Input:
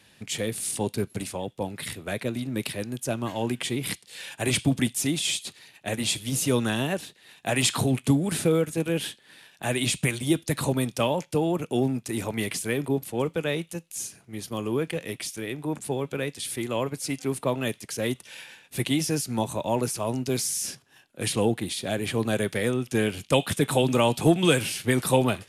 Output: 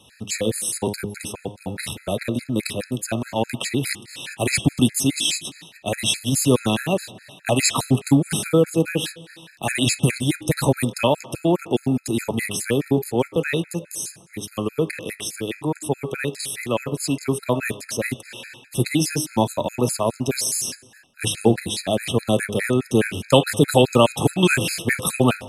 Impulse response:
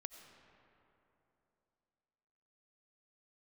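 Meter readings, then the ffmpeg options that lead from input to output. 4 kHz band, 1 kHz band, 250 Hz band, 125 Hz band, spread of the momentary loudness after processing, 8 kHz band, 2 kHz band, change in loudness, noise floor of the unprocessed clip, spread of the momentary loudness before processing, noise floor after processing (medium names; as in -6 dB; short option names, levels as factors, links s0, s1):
+4.5 dB, +5.0 dB, +4.5 dB, +4.5 dB, 11 LU, +5.0 dB, +5.0 dB, +5.0 dB, -59 dBFS, 10 LU, -50 dBFS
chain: -filter_complex "[0:a]bandreject=f=102.6:t=h:w=4,bandreject=f=205.2:t=h:w=4,bandreject=f=307.8:t=h:w=4,bandreject=f=410.4:t=h:w=4,bandreject=f=513:t=h:w=4,bandreject=f=615.6:t=h:w=4,bandreject=f=718.2:t=h:w=4,bandreject=f=820.8:t=h:w=4,bandreject=f=923.4:t=h:w=4,bandreject=f=1026:t=h:w=4,bandreject=f=1128.6:t=h:w=4,bandreject=f=1231.2:t=h:w=4,bandreject=f=1333.8:t=h:w=4,bandreject=f=1436.4:t=h:w=4,bandreject=f=1539:t=h:w=4,bandreject=f=1641.6:t=h:w=4,bandreject=f=1744.2:t=h:w=4,bandreject=f=1846.8:t=h:w=4,bandreject=f=1949.4:t=h:w=4,bandreject=f=2052:t=h:w=4,bandreject=f=2154.6:t=h:w=4,bandreject=f=2257.2:t=h:w=4,bandreject=f=2359.8:t=h:w=4,bandreject=f=2462.4:t=h:w=4,bandreject=f=2565:t=h:w=4,bandreject=f=2667.6:t=h:w=4,bandreject=f=2770.2:t=h:w=4,bandreject=f=2872.8:t=h:w=4,bandreject=f=2975.4:t=h:w=4,bandreject=f=3078:t=h:w=4,bandreject=f=3180.6:t=h:w=4,bandreject=f=3283.2:t=h:w=4,bandreject=f=3385.8:t=h:w=4,bandreject=f=3488.4:t=h:w=4,bandreject=f=3591:t=h:w=4,asplit=2[s0][s1];[1:a]atrim=start_sample=2205,afade=t=out:st=0.32:d=0.01,atrim=end_sample=14553,asetrate=22932,aresample=44100[s2];[s1][s2]afir=irnorm=-1:irlink=0,volume=0.266[s3];[s0][s3]amix=inputs=2:normalize=0,afftfilt=real='re*gt(sin(2*PI*4.8*pts/sr)*(1-2*mod(floor(b*sr/1024/1300),2)),0)':imag='im*gt(sin(2*PI*4.8*pts/sr)*(1-2*mod(floor(b*sr/1024/1300),2)),0)':win_size=1024:overlap=0.75,volume=2.11"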